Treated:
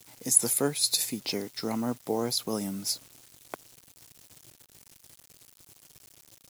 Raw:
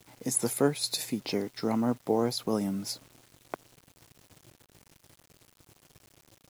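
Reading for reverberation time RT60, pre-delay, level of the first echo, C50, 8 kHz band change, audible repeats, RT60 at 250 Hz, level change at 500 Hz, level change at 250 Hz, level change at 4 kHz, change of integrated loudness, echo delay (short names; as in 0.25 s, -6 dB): none, none, none, none, +8.0 dB, none, none, -3.0 dB, -3.0 dB, +4.5 dB, +2.5 dB, none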